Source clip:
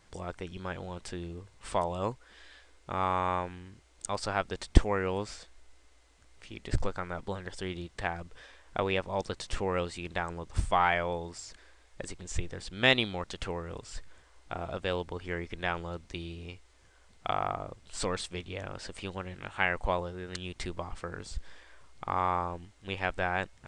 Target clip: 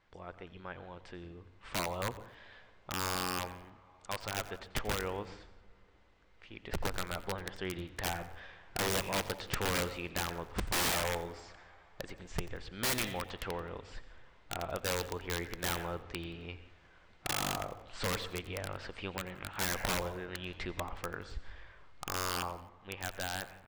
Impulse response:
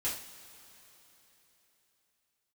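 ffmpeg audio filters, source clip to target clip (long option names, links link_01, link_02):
-filter_complex "[0:a]dynaudnorm=framelen=310:gausssize=13:maxgain=8.5dB,lowshelf=frequency=470:gain=-6.5,aeval=exprs='0.398*(abs(mod(val(0)/0.398+3,4)-2)-1)':channel_layout=same,lowpass=2900,asplit=2[link_01][link_02];[link_02]lowshelf=frequency=220:gain=8[link_03];[1:a]atrim=start_sample=2205,adelay=116[link_04];[link_03][link_04]afir=irnorm=-1:irlink=0,volume=-20dB[link_05];[link_01][link_05]amix=inputs=2:normalize=0,aeval=exprs='(mod(10.6*val(0)+1,2)-1)/10.6':channel_layout=same,asplit=4[link_06][link_07][link_08][link_09];[link_07]adelay=88,afreqshift=-52,volume=-17.5dB[link_10];[link_08]adelay=176,afreqshift=-104,volume=-25.5dB[link_11];[link_09]adelay=264,afreqshift=-156,volume=-33.4dB[link_12];[link_06][link_10][link_11][link_12]amix=inputs=4:normalize=0,volume=-5dB"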